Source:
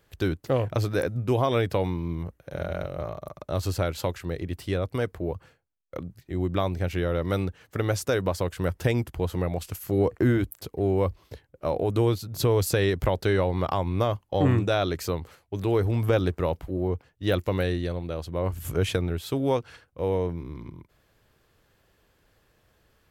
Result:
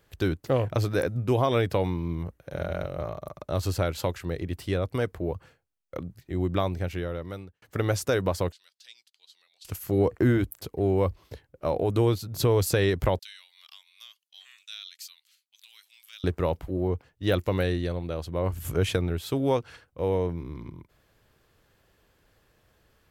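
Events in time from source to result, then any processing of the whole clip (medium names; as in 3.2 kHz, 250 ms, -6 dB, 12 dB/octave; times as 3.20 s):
6.57–7.62 s: fade out
8.52–9.65 s: ladder band-pass 4.7 kHz, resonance 55%
13.19–16.24 s: ladder high-pass 2.6 kHz, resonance 25%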